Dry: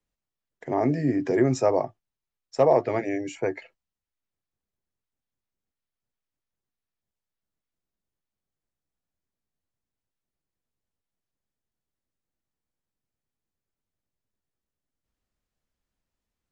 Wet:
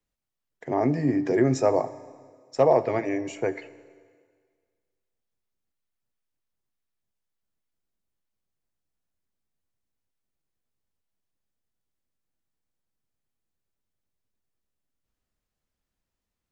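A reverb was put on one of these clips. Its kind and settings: Schroeder reverb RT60 1.8 s, combs from 30 ms, DRR 15.5 dB

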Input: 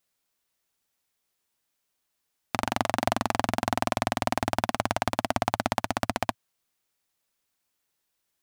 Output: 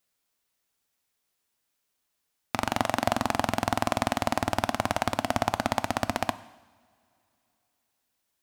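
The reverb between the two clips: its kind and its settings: two-slope reverb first 0.95 s, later 3.4 s, from -21 dB, DRR 14 dB

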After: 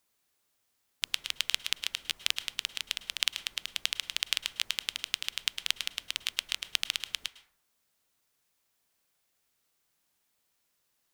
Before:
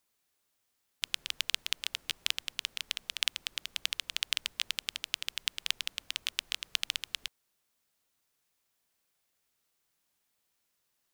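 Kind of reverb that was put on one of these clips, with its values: plate-style reverb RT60 0.6 s, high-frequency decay 0.4×, pre-delay 95 ms, DRR 14 dB; trim +2 dB

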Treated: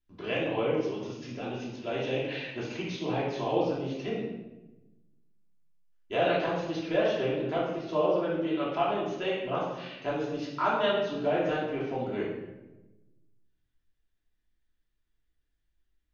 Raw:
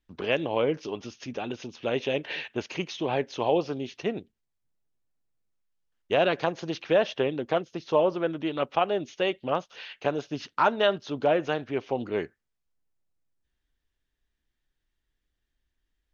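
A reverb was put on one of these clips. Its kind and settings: simulated room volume 460 m³, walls mixed, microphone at 3 m; trim -10.5 dB

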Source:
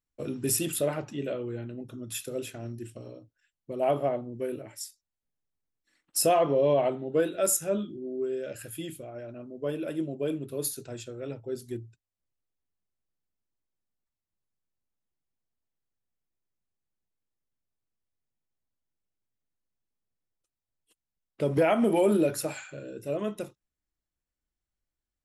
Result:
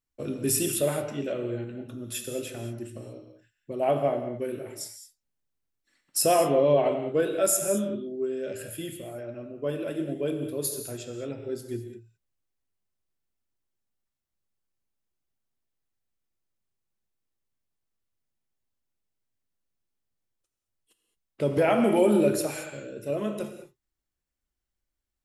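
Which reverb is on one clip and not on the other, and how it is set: gated-style reverb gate 240 ms flat, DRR 5.5 dB; trim +1 dB

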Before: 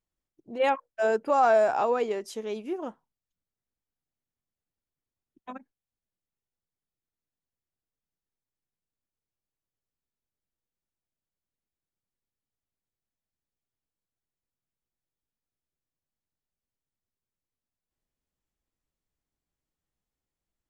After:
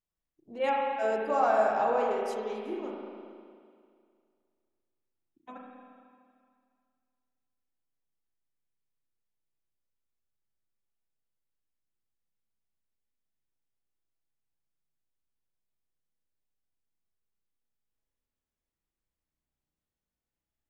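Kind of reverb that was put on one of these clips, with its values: spring tank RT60 2.2 s, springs 32/38 ms, chirp 65 ms, DRR -2 dB; trim -6.5 dB

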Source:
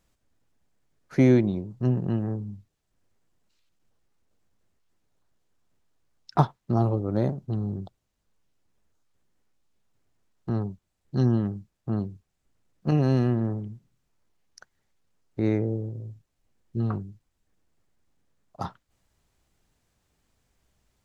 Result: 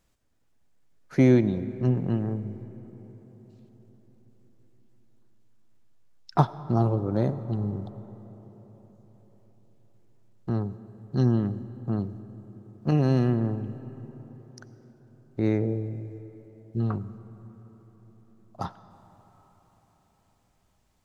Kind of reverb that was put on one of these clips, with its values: algorithmic reverb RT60 4.9 s, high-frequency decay 0.45×, pre-delay 50 ms, DRR 14.5 dB

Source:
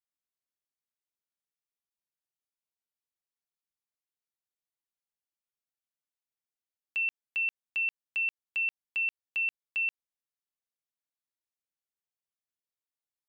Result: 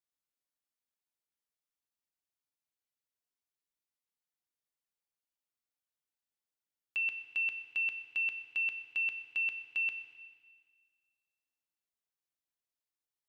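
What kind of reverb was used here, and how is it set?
FDN reverb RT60 1.7 s, low-frequency decay 1.05×, high-frequency decay 1×, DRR 6 dB; trim -2.5 dB

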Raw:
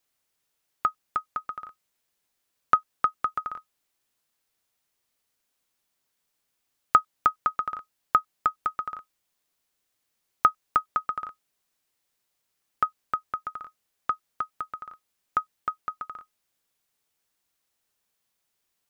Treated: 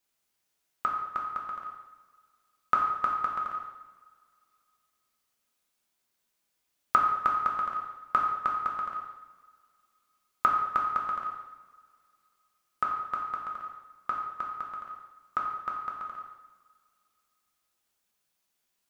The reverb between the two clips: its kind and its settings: two-slope reverb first 0.97 s, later 2.7 s, from -20 dB, DRR -1.5 dB; trim -4.5 dB

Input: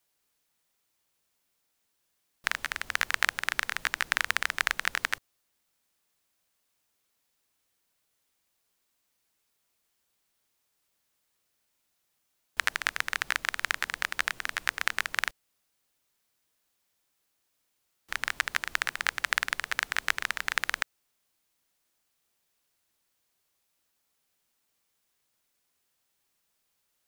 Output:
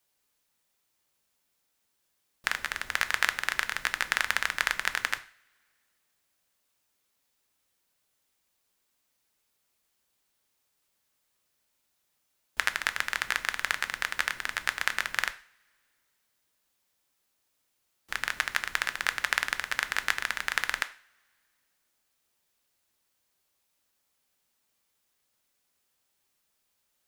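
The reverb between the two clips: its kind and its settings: two-slope reverb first 0.41 s, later 2.2 s, from -27 dB, DRR 10 dB

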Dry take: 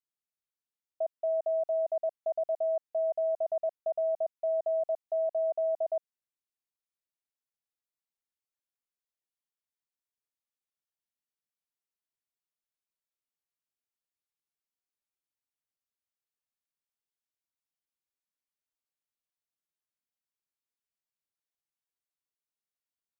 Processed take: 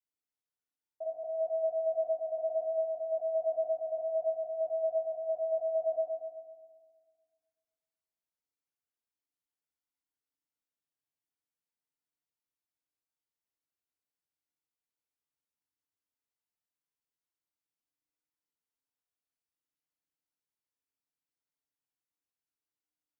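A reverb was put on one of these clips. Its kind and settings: FDN reverb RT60 1.6 s, low-frequency decay 1.45×, high-frequency decay 0.45×, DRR -7.5 dB; trim -11 dB

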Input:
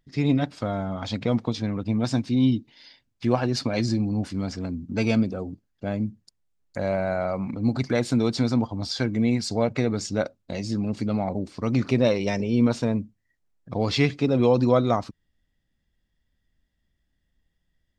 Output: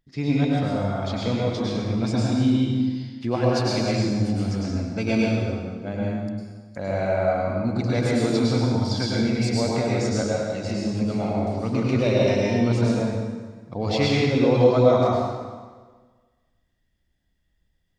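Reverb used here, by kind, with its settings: plate-style reverb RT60 1.5 s, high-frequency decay 0.85×, pre-delay 90 ms, DRR -5 dB; trim -3.5 dB

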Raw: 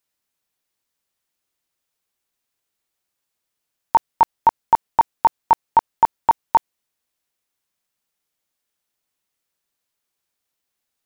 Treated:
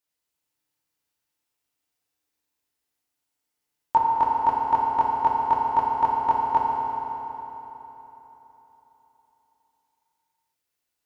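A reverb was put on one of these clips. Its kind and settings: FDN reverb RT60 3.8 s, high-frequency decay 0.8×, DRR -4 dB; trim -7.5 dB

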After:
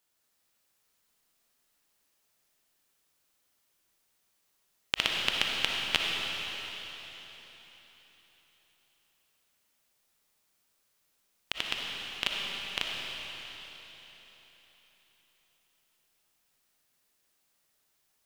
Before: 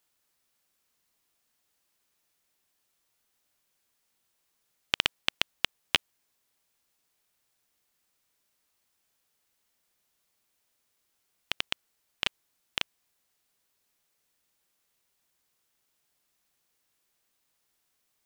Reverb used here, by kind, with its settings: algorithmic reverb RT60 4 s, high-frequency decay 1×, pre-delay 20 ms, DRR -2 dB; trim -2 dB

